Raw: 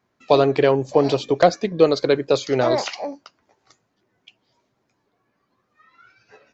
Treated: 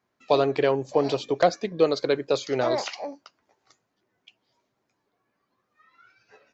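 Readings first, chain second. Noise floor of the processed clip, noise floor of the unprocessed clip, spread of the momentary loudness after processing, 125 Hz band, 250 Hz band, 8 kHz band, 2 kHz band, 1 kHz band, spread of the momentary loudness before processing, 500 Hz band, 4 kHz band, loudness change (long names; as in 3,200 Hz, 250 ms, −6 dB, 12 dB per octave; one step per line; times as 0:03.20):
−77 dBFS, −72 dBFS, 6 LU, −8.0 dB, −6.5 dB, can't be measured, −4.5 dB, −5.0 dB, 6 LU, −5.5 dB, −4.5 dB, −5.5 dB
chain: low-shelf EQ 230 Hz −5 dB
level −4.5 dB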